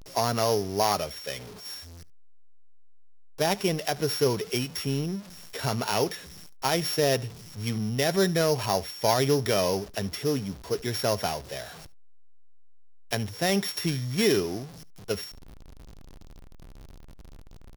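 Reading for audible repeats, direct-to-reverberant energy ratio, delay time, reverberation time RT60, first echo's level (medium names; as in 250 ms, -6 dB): 1, no reverb, 72 ms, no reverb, -22.5 dB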